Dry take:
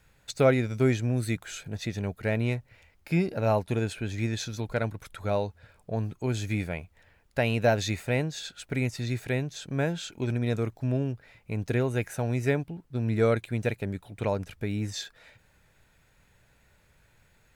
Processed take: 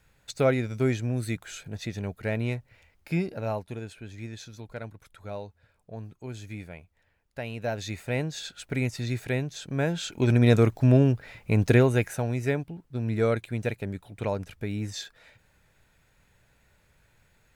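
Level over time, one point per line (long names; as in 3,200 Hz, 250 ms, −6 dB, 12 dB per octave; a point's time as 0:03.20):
0:03.13 −1.5 dB
0:03.81 −9.5 dB
0:07.54 −9.5 dB
0:08.33 +0.5 dB
0:09.80 +0.5 dB
0:10.42 +9 dB
0:11.68 +9 dB
0:12.35 −1 dB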